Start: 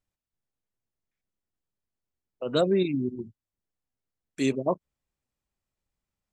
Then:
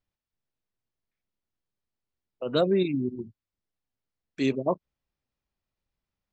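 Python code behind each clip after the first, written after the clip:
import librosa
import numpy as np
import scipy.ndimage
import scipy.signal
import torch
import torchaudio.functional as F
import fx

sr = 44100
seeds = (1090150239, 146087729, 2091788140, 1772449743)

y = scipy.signal.sosfilt(scipy.signal.butter(4, 5500.0, 'lowpass', fs=sr, output='sos'), x)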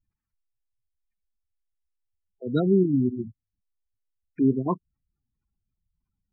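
y = fx.spec_gate(x, sr, threshold_db=-15, keep='strong')
y = fx.fixed_phaser(y, sr, hz=1400.0, stages=4)
y = F.gain(torch.from_numpy(y), 8.5).numpy()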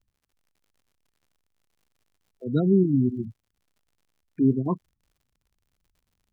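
y = fx.dmg_crackle(x, sr, seeds[0], per_s=89.0, level_db=-51.0)
y = fx.low_shelf(y, sr, hz=310.0, db=9.5)
y = F.gain(torch.from_numpy(y), -5.0).numpy()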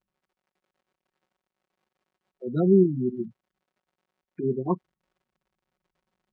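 y = fx.bandpass_q(x, sr, hz=670.0, q=0.51)
y = y + 0.93 * np.pad(y, (int(5.4 * sr / 1000.0), 0))[:len(y)]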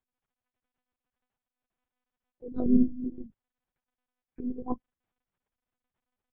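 y = fx.lpc_monotone(x, sr, seeds[1], pitch_hz=250.0, order=8)
y = fx.upward_expand(y, sr, threshold_db=-26.0, expansion=1.5)
y = F.gain(torch.from_numpy(y), -2.0).numpy()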